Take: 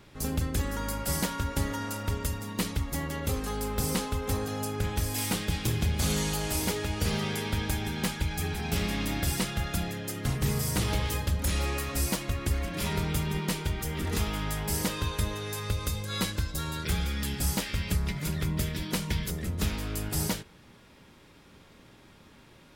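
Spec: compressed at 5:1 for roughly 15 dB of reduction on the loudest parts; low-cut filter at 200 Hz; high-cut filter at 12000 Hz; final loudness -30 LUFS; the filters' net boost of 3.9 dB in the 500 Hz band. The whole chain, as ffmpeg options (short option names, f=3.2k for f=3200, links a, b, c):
-af "highpass=200,lowpass=12k,equalizer=f=500:t=o:g=5,acompressor=threshold=-43dB:ratio=5,volume=14.5dB"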